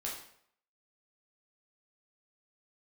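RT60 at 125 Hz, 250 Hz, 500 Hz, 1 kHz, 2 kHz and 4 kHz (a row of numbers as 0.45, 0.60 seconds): 0.60, 0.60, 0.65, 0.65, 0.60, 0.55 seconds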